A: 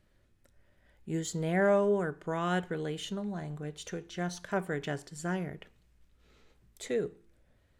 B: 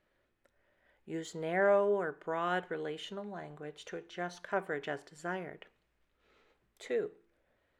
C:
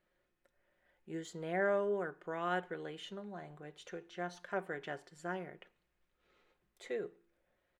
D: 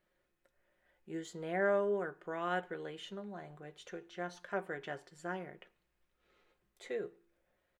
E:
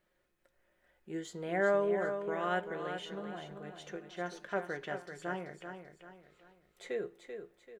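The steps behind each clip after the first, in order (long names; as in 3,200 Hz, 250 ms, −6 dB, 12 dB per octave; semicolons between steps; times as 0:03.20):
bass and treble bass −15 dB, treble −12 dB
comb filter 5.6 ms, depth 37%; level −4.5 dB
double-tracking delay 15 ms −13.5 dB
repeating echo 387 ms, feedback 38%, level −8 dB; level +2 dB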